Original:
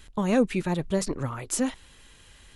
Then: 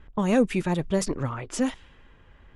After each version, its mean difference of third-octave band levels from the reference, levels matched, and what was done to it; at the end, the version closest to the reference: 2.5 dB: low-pass opened by the level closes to 1300 Hz, open at -21 dBFS; notch 4100 Hz, Q 12; in parallel at -12 dB: soft clip -21.5 dBFS, distortion -11 dB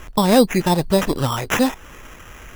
7.0 dB: dynamic EQ 850 Hz, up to +7 dB, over -43 dBFS, Q 1.4; in parallel at +2.5 dB: compressor, threshold -35 dBFS, peak gain reduction 18.5 dB; on the sum: sample-and-hold 10×; gain +5.5 dB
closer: first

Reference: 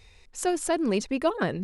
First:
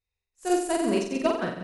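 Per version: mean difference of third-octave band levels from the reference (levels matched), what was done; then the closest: 8.0 dB: flutter echo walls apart 7.7 m, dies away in 1.2 s; upward expander 2.5:1, over -42 dBFS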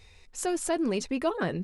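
1.5 dB: doubler 12 ms -12 dB; in parallel at 0 dB: limiter -23 dBFS, peak gain reduction 10 dB; on the sum: gain -6.5 dB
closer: second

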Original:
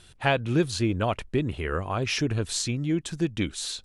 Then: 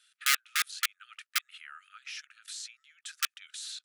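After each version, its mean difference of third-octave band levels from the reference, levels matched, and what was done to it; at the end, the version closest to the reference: 17.5 dB: level quantiser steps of 22 dB; wrapped overs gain 19.5 dB; brick-wall FIR high-pass 1200 Hz; gain +3 dB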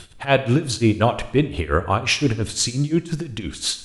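5.0 dB: in parallel at -1 dB: compressor, threshold -35 dBFS, peak gain reduction 16 dB; on the sum: tremolo 5.7 Hz, depth 92%; Schroeder reverb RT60 0.79 s, combs from 28 ms, DRR 12.5 dB; gain +8.5 dB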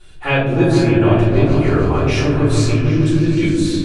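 9.5 dB: high shelf 4700 Hz -5 dB; on a send: repeats that get brighter 0.152 s, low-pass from 400 Hz, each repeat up 1 oct, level 0 dB; on the sum: shoebox room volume 79 m³, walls mixed, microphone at 3.3 m; gain -6 dB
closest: second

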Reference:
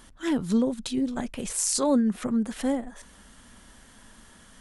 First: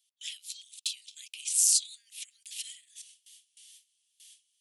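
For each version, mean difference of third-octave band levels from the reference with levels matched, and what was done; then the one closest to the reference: 14.0 dB: gate with hold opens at -40 dBFS; wow and flutter 39 cents; steep high-pass 2600 Hz 48 dB/oct; gain +3.5 dB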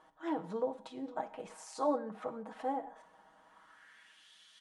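6.5 dB: comb 6.3 ms; band-pass sweep 800 Hz -> 3500 Hz, 3.42–4.31; non-linear reverb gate 0.21 s falling, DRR 10.5 dB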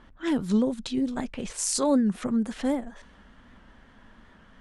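2.0 dB: low-pass opened by the level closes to 2200 Hz, open at -22 dBFS; high shelf 10000 Hz -3.5 dB; record warp 78 rpm, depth 100 cents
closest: third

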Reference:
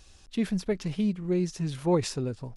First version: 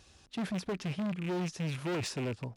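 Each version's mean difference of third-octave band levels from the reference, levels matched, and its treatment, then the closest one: 7.0 dB: rattling part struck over -35 dBFS, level -30 dBFS; high shelf 4500 Hz -6 dB; overloaded stage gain 31 dB; HPF 77 Hz 12 dB/oct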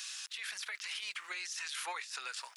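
18.5 dB: HPF 1400 Hz 24 dB/oct; negative-ratio compressor -50 dBFS, ratio -1; limiter -42.5 dBFS, peak gain reduction 10.5 dB; gain +12 dB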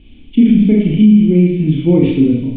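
9.5 dB: vocal tract filter i; on a send: thinning echo 67 ms, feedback 77%, high-pass 690 Hz, level -8.5 dB; on the sum: Schroeder reverb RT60 0.56 s, combs from 26 ms, DRR -3 dB; maximiser +24.5 dB; gain -1 dB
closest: first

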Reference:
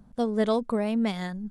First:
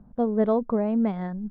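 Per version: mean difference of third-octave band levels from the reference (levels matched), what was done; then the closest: 4.0 dB: LPF 1100 Hz 12 dB/oct; gain +2.5 dB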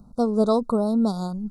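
2.5 dB: Chebyshev band-stop 1400–3800 Hz, order 5; gain +5 dB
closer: second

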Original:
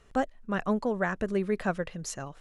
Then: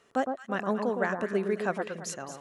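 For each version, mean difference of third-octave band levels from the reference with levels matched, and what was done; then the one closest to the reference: 4.5 dB: HPF 230 Hz 12 dB/oct; echo with dull and thin repeats by turns 0.111 s, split 1300 Hz, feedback 55%, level -5 dB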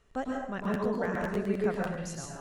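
8.0 dB: plate-style reverb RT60 0.82 s, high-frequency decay 0.75×, pre-delay 95 ms, DRR -2.5 dB; crackling interface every 0.10 s, samples 512, repeat, from 0.63; gain -7 dB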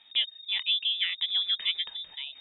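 17.5 dB: dynamic EQ 2600 Hz, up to -7 dB, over -49 dBFS, Q 1.4; inverted band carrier 3700 Hz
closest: first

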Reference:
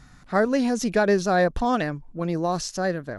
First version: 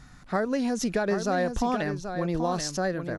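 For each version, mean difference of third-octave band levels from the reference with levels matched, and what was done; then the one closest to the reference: 4.0 dB: compressor, threshold -23 dBFS, peak gain reduction 7.5 dB; on a send: echo 0.782 s -8 dB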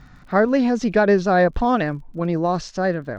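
2.5 dB: air absorption 140 m; crackle 34/s -46 dBFS; high shelf 8100 Hz -5 dB; gain +4.5 dB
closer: second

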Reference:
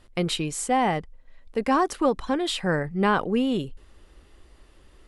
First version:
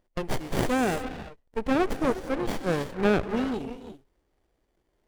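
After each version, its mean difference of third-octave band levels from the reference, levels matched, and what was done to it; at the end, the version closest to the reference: 11.0 dB: spectral noise reduction 13 dB; tone controls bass -10 dB, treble +11 dB; non-linear reverb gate 0.37 s rising, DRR 9 dB; running maximum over 33 samples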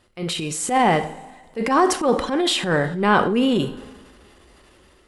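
6.0 dB: two-slope reverb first 0.48 s, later 2.2 s, from -19 dB, DRR 9.5 dB; AGC gain up to 7 dB; HPF 130 Hz 6 dB/oct; transient shaper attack -10 dB, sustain +5 dB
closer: second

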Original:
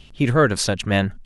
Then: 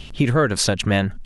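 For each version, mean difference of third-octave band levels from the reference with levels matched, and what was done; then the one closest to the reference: 2.5 dB: compressor 3:1, threshold -27 dBFS, peak gain reduction 12 dB; gain +9 dB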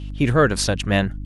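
1.5 dB: buzz 50 Hz, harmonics 6, -31 dBFS -7 dB/oct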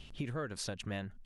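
4.0 dB: compressor 5:1, threshold -32 dBFS, peak gain reduction 18 dB; gain -5.5 dB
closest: second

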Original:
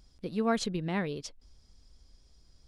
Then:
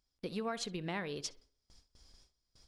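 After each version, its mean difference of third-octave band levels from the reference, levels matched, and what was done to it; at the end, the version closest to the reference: 5.0 dB: gate with hold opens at -48 dBFS; low shelf 420 Hz -10 dB; compressor 5:1, threshold -40 dBFS, peak gain reduction 13 dB; on a send: tape echo 63 ms, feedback 45%, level -15 dB, low-pass 2000 Hz; on the sum: gain +4.5 dB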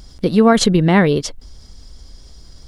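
1.5 dB: notch 2500 Hz, Q 12; dynamic EQ 4800 Hz, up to -4 dB, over -52 dBFS, Q 1; in parallel at -2 dB: level quantiser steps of 13 dB; on the sum: maximiser +18 dB; gain -1 dB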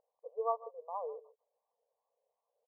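17.0 dB: Wiener smoothing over 25 samples; harmonic tremolo 2.7 Hz, depth 100%, crossover 730 Hz; brick-wall FIR band-pass 440–1200 Hz; echo 0.146 s -19 dB; gain +4.5 dB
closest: second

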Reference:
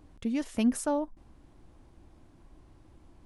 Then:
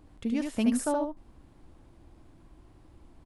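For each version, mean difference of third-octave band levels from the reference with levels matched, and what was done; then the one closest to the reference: 1.5 dB: bell 6000 Hz -3.5 dB 0.23 oct; on a send: echo 74 ms -4.5 dB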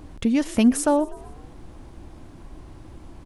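3.5 dB: in parallel at +1 dB: compressor, threshold -38 dBFS, peak gain reduction 16 dB; on the sum: frequency-shifting echo 0.123 s, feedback 57%, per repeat +48 Hz, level -22 dB; gain +7 dB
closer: first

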